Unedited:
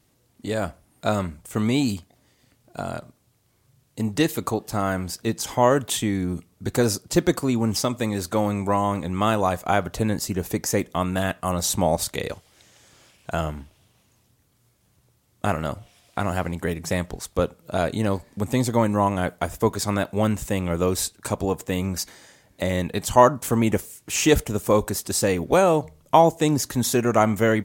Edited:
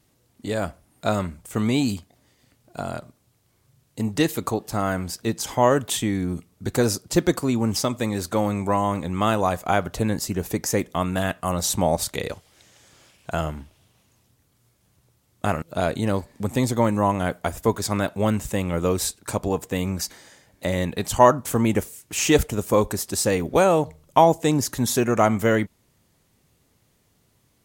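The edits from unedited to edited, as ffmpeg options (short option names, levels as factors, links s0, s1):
-filter_complex "[0:a]asplit=2[s0][s1];[s0]atrim=end=15.622[s2];[s1]atrim=start=17.588[s3];[s2][s3]acrossfade=d=0.004:c1=hsin:c2=hsin"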